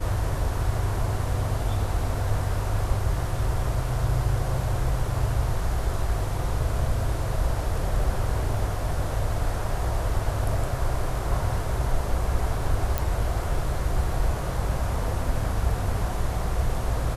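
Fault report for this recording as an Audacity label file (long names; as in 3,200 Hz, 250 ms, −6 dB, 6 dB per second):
12.980000	12.980000	click −9 dBFS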